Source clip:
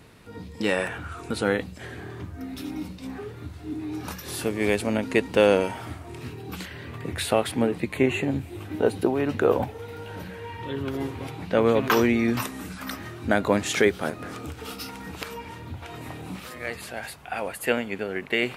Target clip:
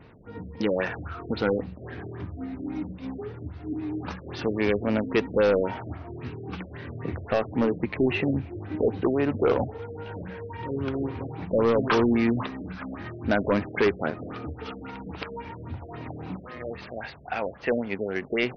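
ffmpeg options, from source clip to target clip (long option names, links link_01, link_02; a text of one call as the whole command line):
ffmpeg -i in.wav -af "adynamicsmooth=sensitivity=6.5:basefreq=3100,volume=17.5dB,asoftclip=hard,volume=-17.5dB,afftfilt=real='re*lt(b*sr/1024,650*pow(6500/650,0.5+0.5*sin(2*PI*3.7*pts/sr)))':imag='im*lt(b*sr/1024,650*pow(6500/650,0.5+0.5*sin(2*PI*3.7*pts/sr)))':win_size=1024:overlap=0.75,volume=1dB" out.wav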